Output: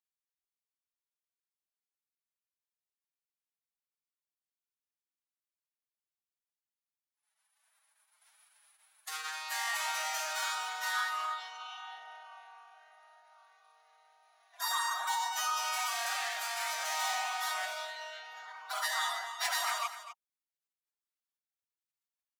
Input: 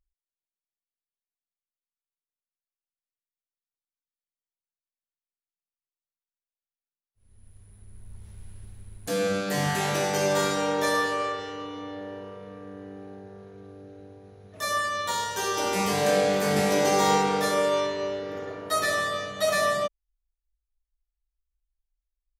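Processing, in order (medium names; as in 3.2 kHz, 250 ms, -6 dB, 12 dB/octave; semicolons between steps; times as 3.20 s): overload inside the chain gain 25 dB; formant-preserving pitch shift +8 st; steep high-pass 780 Hz 48 dB/octave; delay 250 ms -12.5 dB; trim -2.5 dB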